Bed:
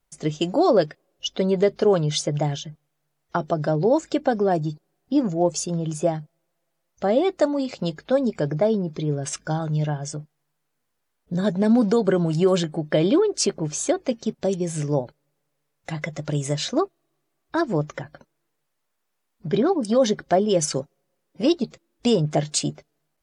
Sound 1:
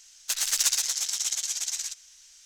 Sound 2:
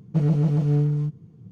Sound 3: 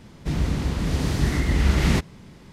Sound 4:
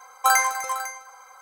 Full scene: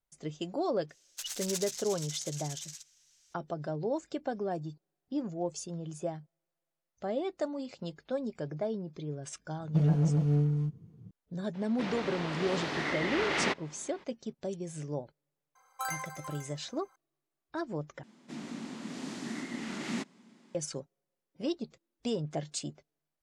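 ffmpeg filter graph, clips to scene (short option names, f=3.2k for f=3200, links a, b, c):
-filter_complex "[3:a]asplit=2[a][b];[0:a]volume=-13.5dB[c];[a]highpass=490,lowpass=3.6k[d];[b]highpass=f=220:w=0.5412,highpass=f=220:w=1.3066,equalizer=f=230:t=q:w=4:g=9,equalizer=f=470:t=q:w=4:g=-6,equalizer=f=7.2k:t=q:w=4:g=4,lowpass=f=10k:w=0.5412,lowpass=f=10k:w=1.3066[e];[c]asplit=2[f][g];[f]atrim=end=18.034[h];[e]atrim=end=2.52,asetpts=PTS-STARTPTS,volume=-12.5dB[i];[g]atrim=start=20.546[j];[1:a]atrim=end=2.45,asetpts=PTS-STARTPTS,volume=-13dB,afade=t=in:d=0.004:c=hsin,afade=t=out:st=2.446:d=0.004:c=hsin,adelay=890[k];[2:a]atrim=end=1.51,asetpts=PTS-STARTPTS,volume=-6dB,afade=t=in:d=0.004:c=hsin,afade=t=out:st=1.506:d=0.004:c=hsin,adelay=9600[l];[d]atrim=end=2.52,asetpts=PTS-STARTPTS,volume=-0.5dB,afade=t=in:d=0.02,afade=t=out:st=2.5:d=0.02,adelay=11530[m];[4:a]atrim=end=1.41,asetpts=PTS-STARTPTS,volume=-17.5dB,afade=t=in:d=0.004:c=hsin,afade=t=out:st=1.406:d=0.004:c=hsin,adelay=15550[n];[h][i]acrossfade=d=0.004:c1=hsin:c2=hsin[o];[o][j]acrossfade=d=0.004:c1=hsin:c2=hsin[p];[p][k][l][m][n]amix=inputs=5:normalize=0"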